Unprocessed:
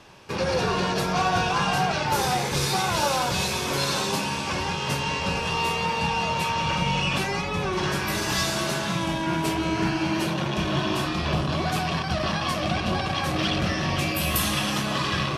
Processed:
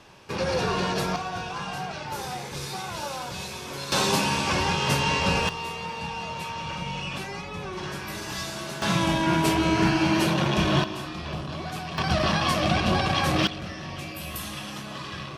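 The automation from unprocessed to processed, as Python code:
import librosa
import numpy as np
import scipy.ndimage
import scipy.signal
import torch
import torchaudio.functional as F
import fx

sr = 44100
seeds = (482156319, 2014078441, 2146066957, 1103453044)

y = fx.gain(x, sr, db=fx.steps((0.0, -1.5), (1.16, -9.5), (3.92, 3.0), (5.49, -8.0), (8.82, 3.0), (10.84, -8.0), (11.98, 2.5), (13.47, -10.5)))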